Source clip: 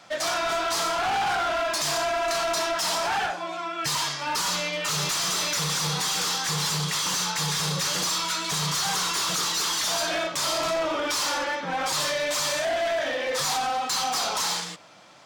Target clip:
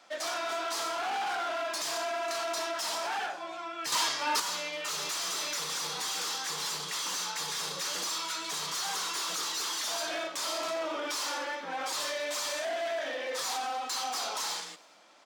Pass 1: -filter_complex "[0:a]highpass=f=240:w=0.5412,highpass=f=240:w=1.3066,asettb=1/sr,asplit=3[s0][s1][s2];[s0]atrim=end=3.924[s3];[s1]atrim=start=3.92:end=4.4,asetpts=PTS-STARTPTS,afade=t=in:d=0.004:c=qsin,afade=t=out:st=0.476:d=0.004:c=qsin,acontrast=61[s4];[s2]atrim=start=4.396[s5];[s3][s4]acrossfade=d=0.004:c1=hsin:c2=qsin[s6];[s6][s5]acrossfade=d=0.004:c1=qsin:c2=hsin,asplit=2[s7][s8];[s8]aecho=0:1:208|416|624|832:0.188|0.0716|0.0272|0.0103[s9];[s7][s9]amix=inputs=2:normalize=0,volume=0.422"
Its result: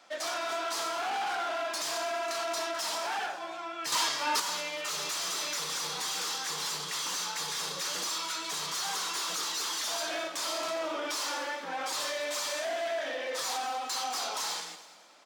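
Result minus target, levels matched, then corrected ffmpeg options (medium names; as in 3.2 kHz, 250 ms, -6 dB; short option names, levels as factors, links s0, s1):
echo-to-direct +9.5 dB
-filter_complex "[0:a]highpass=f=240:w=0.5412,highpass=f=240:w=1.3066,asettb=1/sr,asplit=3[s0][s1][s2];[s0]atrim=end=3.924[s3];[s1]atrim=start=3.92:end=4.4,asetpts=PTS-STARTPTS,afade=t=in:d=0.004:c=qsin,afade=t=out:st=0.476:d=0.004:c=qsin,acontrast=61[s4];[s2]atrim=start=4.396[s5];[s3][s4]acrossfade=d=0.004:c1=hsin:c2=qsin[s6];[s6][s5]acrossfade=d=0.004:c1=qsin:c2=hsin,asplit=2[s7][s8];[s8]aecho=0:1:208|416:0.0631|0.024[s9];[s7][s9]amix=inputs=2:normalize=0,volume=0.422"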